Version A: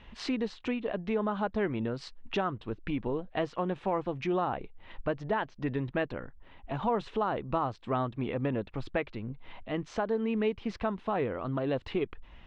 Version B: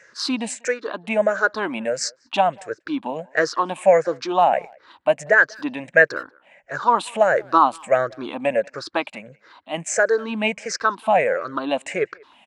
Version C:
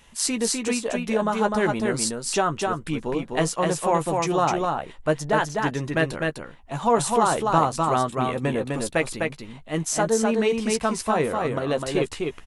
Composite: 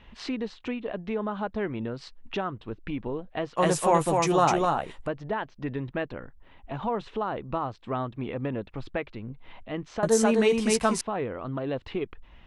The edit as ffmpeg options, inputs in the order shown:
-filter_complex "[2:a]asplit=2[a][b];[0:a]asplit=3[c][d][e];[c]atrim=end=3.572[f];[a]atrim=start=3.568:end=5.072[g];[d]atrim=start=5.068:end=10.032[h];[b]atrim=start=10.028:end=11.012[i];[e]atrim=start=11.008[j];[f][g]acrossfade=d=0.004:c1=hsin:c2=hsin[k];[k][h]acrossfade=d=0.004:c1=hsin:c2=hsin[l];[l][i]acrossfade=d=0.004:c1=hsin:c2=hsin[m];[m][j]acrossfade=d=0.004:c1=hsin:c2=hsin"

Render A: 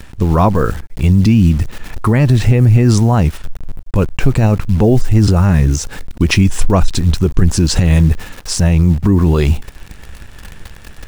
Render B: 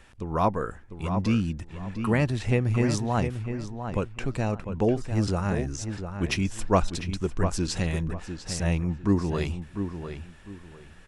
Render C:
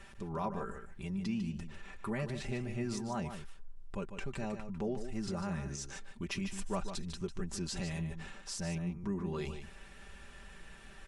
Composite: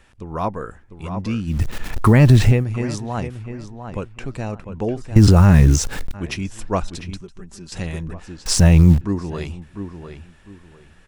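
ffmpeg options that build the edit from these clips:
-filter_complex "[0:a]asplit=3[a][b][c];[1:a]asplit=5[d][e][f][g][h];[d]atrim=end=1.7[i];[a]atrim=start=1.46:end=2.66[j];[e]atrim=start=2.42:end=5.162[k];[b]atrim=start=5.158:end=6.142[l];[f]atrim=start=6.138:end=7.212[m];[2:a]atrim=start=7.208:end=7.722[n];[g]atrim=start=7.718:end=8.462[o];[c]atrim=start=8.458:end=9.012[p];[h]atrim=start=9.008[q];[i][j]acrossfade=d=0.24:c1=tri:c2=tri[r];[r][k]acrossfade=d=0.24:c1=tri:c2=tri[s];[s][l]acrossfade=d=0.004:c1=hsin:c2=hsin[t];[t][m]acrossfade=d=0.004:c1=hsin:c2=hsin[u];[u][n]acrossfade=d=0.004:c1=hsin:c2=hsin[v];[v][o]acrossfade=d=0.004:c1=hsin:c2=hsin[w];[w][p]acrossfade=d=0.004:c1=hsin:c2=hsin[x];[x][q]acrossfade=d=0.004:c1=hsin:c2=hsin"

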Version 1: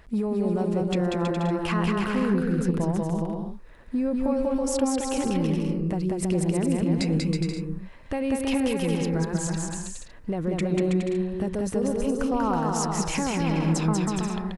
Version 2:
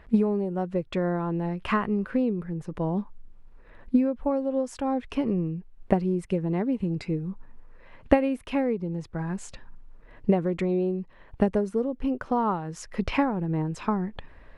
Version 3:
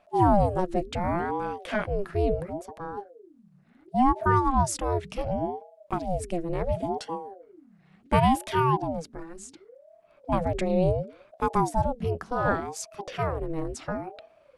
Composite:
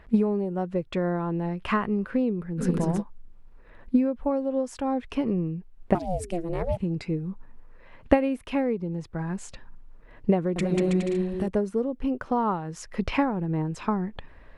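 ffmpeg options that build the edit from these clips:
-filter_complex "[0:a]asplit=2[a][b];[1:a]asplit=4[c][d][e][f];[c]atrim=end=2.63[g];[a]atrim=start=2.57:end=3.03[h];[d]atrim=start=2.97:end=5.952[i];[2:a]atrim=start=5.948:end=6.772[j];[e]atrim=start=6.768:end=10.562[k];[b]atrim=start=10.558:end=11.482[l];[f]atrim=start=11.478[m];[g][h]acrossfade=d=0.06:c1=tri:c2=tri[n];[n][i]acrossfade=d=0.06:c1=tri:c2=tri[o];[o][j]acrossfade=d=0.004:c1=hsin:c2=hsin[p];[p][k]acrossfade=d=0.004:c1=hsin:c2=hsin[q];[q][l]acrossfade=d=0.004:c1=hsin:c2=hsin[r];[r][m]acrossfade=d=0.004:c1=hsin:c2=hsin"

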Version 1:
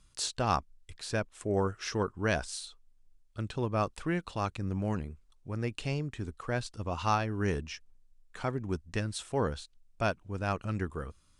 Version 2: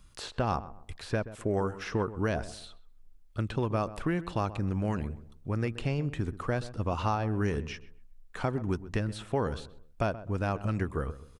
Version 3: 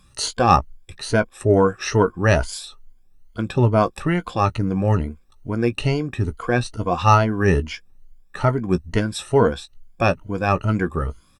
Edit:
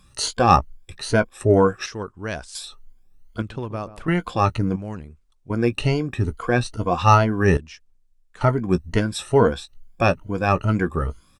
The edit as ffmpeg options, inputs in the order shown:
-filter_complex "[0:a]asplit=3[a][b][c];[2:a]asplit=5[d][e][f][g][h];[d]atrim=end=1.862[i];[a]atrim=start=1.858:end=2.552[j];[e]atrim=start=2.548:end=3.422[k];[1:a]atrim=start=3.418:end=4.082[l];[f]atrim=start=4.078:end=4.762[m];[b]atrim=start=4.758:end=5.502[n];[g]atrim=start=5.498:end=7.572[o];[c]atrim=start=7.568:end=8.412[p];[h]atrim=start=8.408[q];[i][j]acrossfade=d=0.004:c1=hsin:c2=hsin[r];[r][k]acrossfade=d=0.004:c1=hsin:c2=hsin[s];[s][l]acrossfade=d=0.004:c1=hsin:c2=hsin[t];[t][m]acrossfade=d=0.004:c1=hsin:c2=hsin[u];[u][n]acrossfade=d=0.004:c1=hsin:c2=hsin[v];[v][o]acrossfade=d=0.004:c1=hsin:c2=hsin[w];[w][p]acrossfade=d=0.004:c1=hsin:c2=hsin[x];[x][q]acrossfade=d=0.004:c1=hsin:c2=hsin"

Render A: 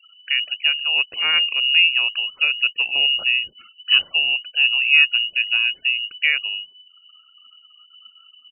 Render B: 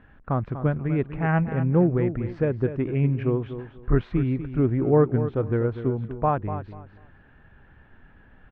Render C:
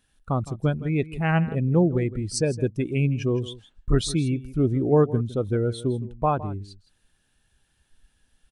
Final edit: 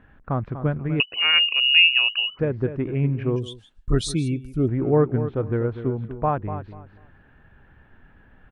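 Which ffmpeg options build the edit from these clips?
-filter_complex "[1:a]asplit=3[a][b][c];[a]atrim=end=1.002[d];[0:a]atrim=start=0.998:end=2.392[e];[b]atrim=start=2.388:end=3.362[f];[2:a]atrim=start=3.358:end=4.682[g];[c]atrim=start=4.678[h];[d][e]acrossfade=d=0.004:c1=hsin:c2=hsin[i];[i][f]acrossfade=d=0.004:c1=hsin:c2=hsin[j];[j][g]acrossfade=d=0.004:c1=hsin:c2=hsin[k];[k][h]acrossfade=d=0.004:c1=hsin:c2=hsin"

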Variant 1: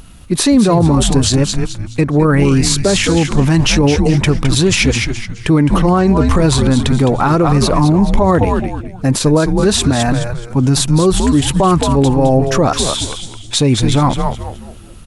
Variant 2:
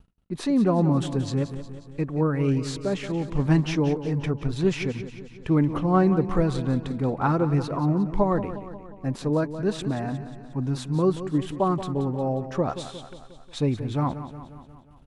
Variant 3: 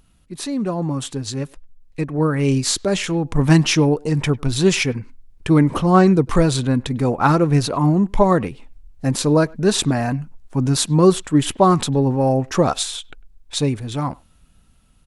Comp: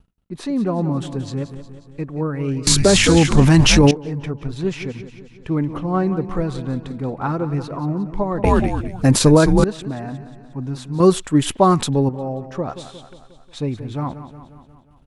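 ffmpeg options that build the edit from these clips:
-filter_complex "[0:a]asplit=2[a][b];[1:a]asplit=4[c][d][e][f];[c]atrim=end=2.672[g];[a]atrim=start=2.668:end=3.912[h];[d]atrim=start=3.908:end=8.442[i];[b]atrim=start=8.438:end=9.642[j];[e]atrim=start=9.638:end=11.002[k];[2:a]atrim=start=10.998:end=12.092[l];[f]atrim=start=12.088[m];[g][h]acrossfade=d=0.004:c1=hsin:c2=hsin[n];[n][i]acrossfade=d=0.004:c1=hsin:c2=hsin[o];[o][j]acrossfade=d=0.004:c1=hsin:c2=hsin[p];[p][k]acrossfade=d=0.004:c1=hsin:c2=hsin[q];[q][l]acrossfade=d=0.004:c1=hsin:c2=hsin[r];[r][m]acrossfade=d=0.004:c1=hsin:c2=hsin"

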